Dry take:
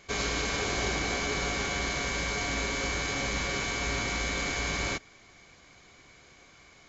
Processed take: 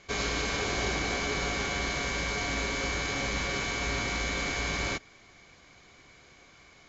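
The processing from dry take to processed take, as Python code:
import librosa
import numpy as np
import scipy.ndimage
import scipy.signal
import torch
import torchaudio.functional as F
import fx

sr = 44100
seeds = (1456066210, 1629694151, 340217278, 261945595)

y = scipy.signal.sosfilt(scipy.signal.butter(2, 7400.0, 'lowpass', fs=sr, output='sos'), x)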